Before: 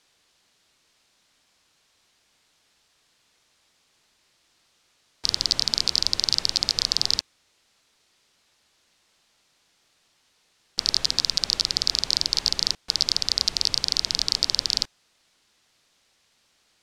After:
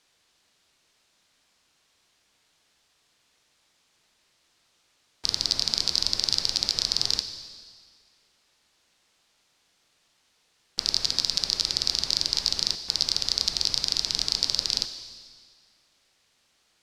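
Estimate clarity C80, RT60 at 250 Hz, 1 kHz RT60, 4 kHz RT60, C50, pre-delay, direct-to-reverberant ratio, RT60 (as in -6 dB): 10.5 dB, 1.8 s, 1.9 s, 1.8 s, 9.5 dB, 7 ms, 8.0 dB, 1.9 s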